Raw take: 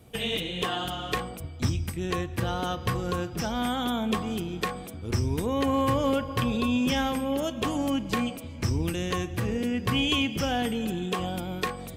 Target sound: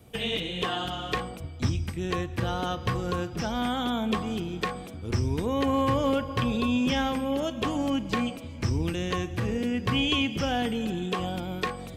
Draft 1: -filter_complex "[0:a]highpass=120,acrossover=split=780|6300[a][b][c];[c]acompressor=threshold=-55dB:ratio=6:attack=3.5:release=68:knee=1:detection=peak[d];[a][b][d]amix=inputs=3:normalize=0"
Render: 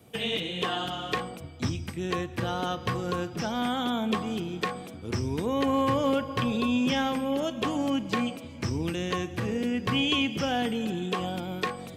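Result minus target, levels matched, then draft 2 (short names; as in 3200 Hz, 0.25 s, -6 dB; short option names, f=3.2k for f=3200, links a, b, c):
125 Hz band -3.0 dB
-filter_complex "[0:a]acrossover=split=780|6300[a][b][c];[c]acompressor=threshold=-55dB:ratio=6:attack=3.5:release=68:knee=1:detection=peak[d];[a][b][d]amix=inputs=3:normalize=0"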